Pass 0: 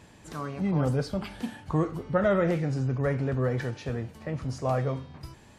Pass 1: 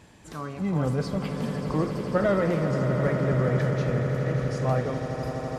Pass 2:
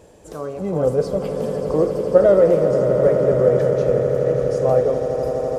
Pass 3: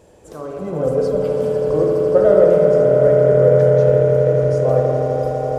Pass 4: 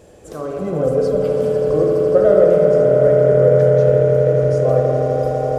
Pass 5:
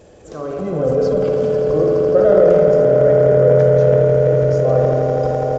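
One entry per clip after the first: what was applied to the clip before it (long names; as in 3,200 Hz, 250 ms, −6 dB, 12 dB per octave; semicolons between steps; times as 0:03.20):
echo that builds up and dies away 83 ms, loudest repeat 8, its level −12 dB
octave-band graphic EQ 125/250/500/1,000/2,000/4,000 Hz −6/−6/+12/−5/−9/−6 dB; level +5.5 dB
spring reverb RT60 3.2 s, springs 53 ms, chirp 50 ms, DRR −0.5 dB; level −2 dB
notch filter 930 Hz, Q 6.7; in parallel at −1.5 dB: downward compressor, threshold −22 dBFS, peak gain reduction 14.5 dB; on the sum: level −1.5 dB
downsampling to 16,000 Hz; transient designer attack −1 dB, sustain +8 dB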